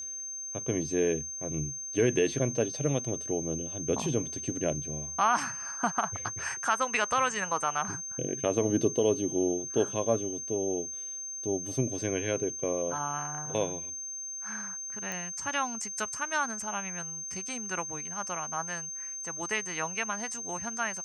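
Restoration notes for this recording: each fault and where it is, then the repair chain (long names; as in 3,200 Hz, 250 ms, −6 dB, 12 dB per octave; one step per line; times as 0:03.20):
whistle 6,300 Hz −36 dBFS
0:15.12: click −20 dBFS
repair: click removal
notch filter 6,300 Hz, Q 30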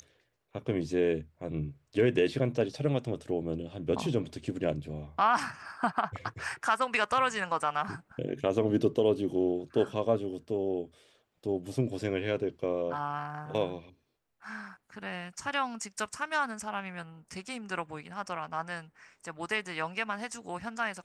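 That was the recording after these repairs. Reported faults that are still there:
none of them is left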